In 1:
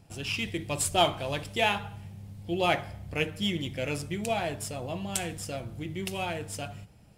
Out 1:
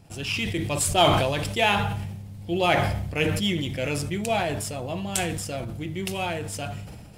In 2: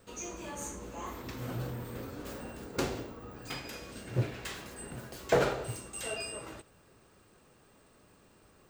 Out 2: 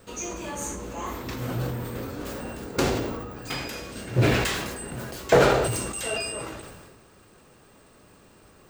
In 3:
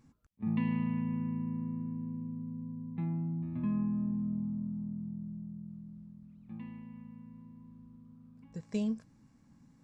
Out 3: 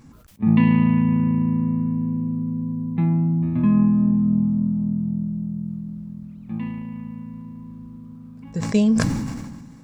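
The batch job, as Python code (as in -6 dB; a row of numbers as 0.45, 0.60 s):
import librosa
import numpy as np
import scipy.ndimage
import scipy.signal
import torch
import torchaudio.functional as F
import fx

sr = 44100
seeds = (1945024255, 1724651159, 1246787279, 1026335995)

y = fx.sustainer(x, sr, db_per_s=34.0)
y = librosa.util.normalize(y) * 10.0 ** (-6 / 20.0)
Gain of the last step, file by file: +3.5, +7.5, +15.0 dB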